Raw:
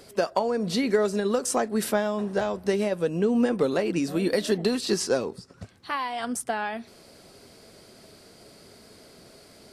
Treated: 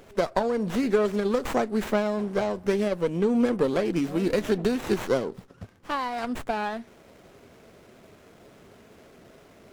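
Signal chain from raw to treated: sliding maximum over 9 samples

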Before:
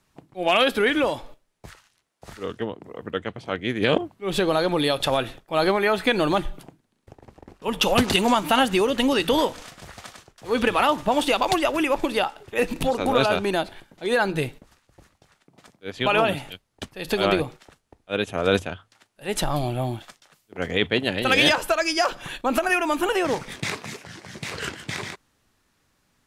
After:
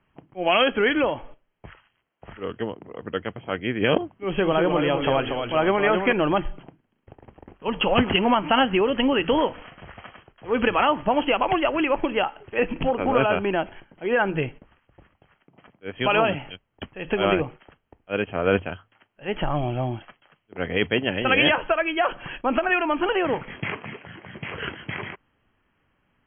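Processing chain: 4.05–6.13 s: ever faster or slower copies 174 ms, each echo -1 st, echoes 3, each echo -6 dB; brick-wall FIR low-pass 3.3 kHz

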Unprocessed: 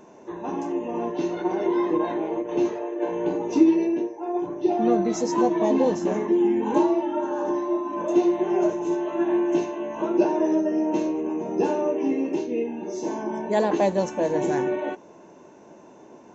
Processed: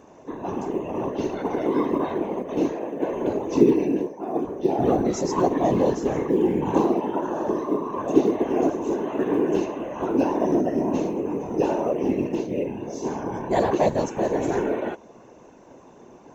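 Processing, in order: short-mantissa float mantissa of 6-bit; whisper effect

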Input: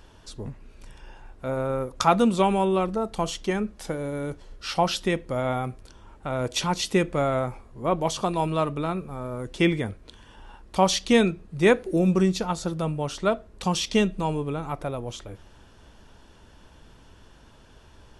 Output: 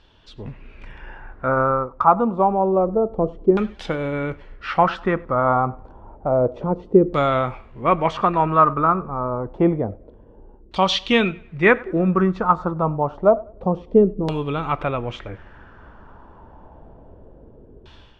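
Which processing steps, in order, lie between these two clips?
thinning echo 99 ms, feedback 37%, high-pass 220 Hz, level -22.5 dB; level rider gain up to 11 dB; dynamic bell 1.2 kHz, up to +7 dB, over -37 dBFS, Q 3.1; LFO low-pass saw down 0.28 Hz 380–3900 Hz; trim -5 dB

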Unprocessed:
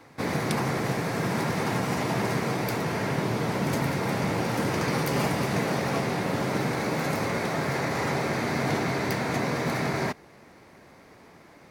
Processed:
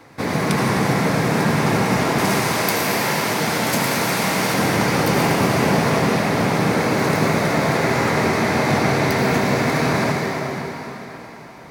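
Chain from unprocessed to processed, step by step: 2.18–4.54 s: tilt EQ +2.5 dB/octave; reverberation RT60 3.8 s, pre-delay 72 ms, DRR -1 dB; trim +5.5 dB

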